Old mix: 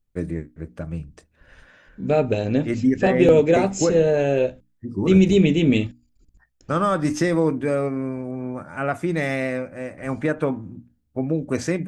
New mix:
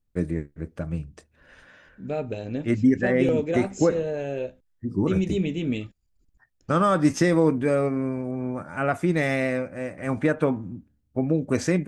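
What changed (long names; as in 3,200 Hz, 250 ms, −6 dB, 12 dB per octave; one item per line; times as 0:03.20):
second voice −10.0 dB
master: remove mains-hum notches 60/120/180/240/300 Hz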